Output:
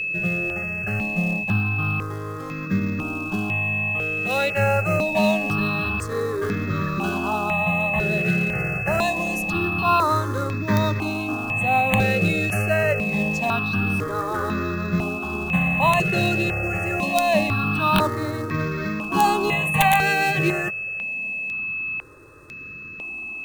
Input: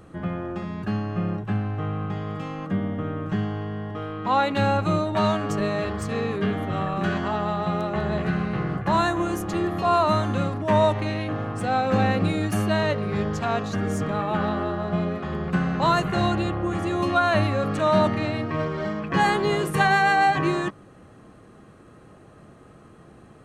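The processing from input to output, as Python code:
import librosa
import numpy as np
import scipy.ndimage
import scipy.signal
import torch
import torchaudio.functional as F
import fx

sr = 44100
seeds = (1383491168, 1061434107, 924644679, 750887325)

p1 = fx.quant_companded(x, sr, bits=4)
p2 = x + (p1 * librosa.db_to_amplitude(-8.0))
p3 = p2 + 10.0 ** (-23.0 / 20.0) * np.sin(2.0 * np.pi * 2600.0 * np.arange(len(p2)) / sr)
p4 = (np.mod(10.0 ** (5.0 / 20.0) * p3 + 1.0, 2.0) - 1.0) / 10.0 ** (5.0 / 20.0)
p5 = fx.phaser_held(p4, sr, hz=2.0, low_hz=260.0, high_hz=2800.0)
y = p5 * librosa.db_to_amplitude(1.0)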